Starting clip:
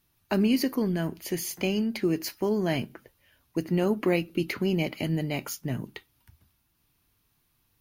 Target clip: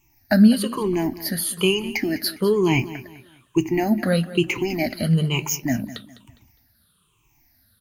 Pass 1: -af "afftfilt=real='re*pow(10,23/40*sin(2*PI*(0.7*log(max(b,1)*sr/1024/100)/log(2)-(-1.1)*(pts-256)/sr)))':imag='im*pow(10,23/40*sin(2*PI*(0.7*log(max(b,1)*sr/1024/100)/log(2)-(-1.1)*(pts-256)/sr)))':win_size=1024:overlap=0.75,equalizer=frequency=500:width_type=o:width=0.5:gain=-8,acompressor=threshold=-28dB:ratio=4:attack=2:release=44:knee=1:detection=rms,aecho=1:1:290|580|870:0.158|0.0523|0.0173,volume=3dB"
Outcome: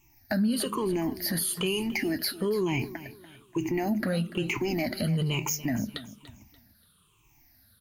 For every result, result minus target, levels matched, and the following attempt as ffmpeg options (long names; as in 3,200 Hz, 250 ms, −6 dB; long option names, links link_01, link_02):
downward compressor: peak gain reduction +14.5 dB; echo 86 ms late
-af "afftfilt=real='re*pow(10,23/40*sin(2*PI*(0.7*log(max(b,1)*sr/1024/100)/log(2)-(-1.1)*(pts-256)/sr)))':imag='im*pow(10,23/40*sin(2*PI*(0.7*log(max(b,1)*sr/1024/100)/log(2)-(-1.1)*(pts-256)/sr)))':win_size=1024:overlap=0.75,equalizer=frequency=500:width_type=o:width=0.5:gain=-8,aecho=1:1:290|580|870:0.158|0.0523|0.0173,volume=3dB"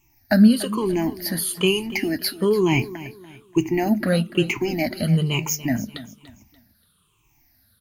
echo 86 ms late
-af "afftfilt=real='re*pow(10,23/40*sin(2*PI*(0.7*log(max(b,1)*sr/1024/100)/log(2)-(-1.1)*(pts-256)/sr)))':imag='im*pow(10,23/40*sin(2*PI*(0.7*log(max(b,1)*sr/1024/100)/log(2)-(-1.1)*(pts-256)/sr)))':win_size=1024:overlap=0.75,equalizer=frequency=500:width_type=o:width=0.5:gain=-8,aecho=1:1:204|408|612:0.158|0.0523|0.0173,volume=3dB"